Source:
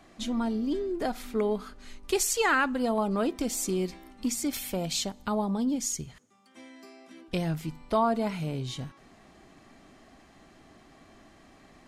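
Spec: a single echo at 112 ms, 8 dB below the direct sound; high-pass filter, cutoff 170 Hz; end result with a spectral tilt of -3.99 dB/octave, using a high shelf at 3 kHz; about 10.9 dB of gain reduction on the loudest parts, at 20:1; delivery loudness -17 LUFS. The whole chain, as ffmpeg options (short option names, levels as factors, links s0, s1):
-af "highpass=170,highshelf=f=3000:g=-3.5,acompressor=threshold=0.0282:ratio=20,aecho=1:1:112:0.398,volume=8.91"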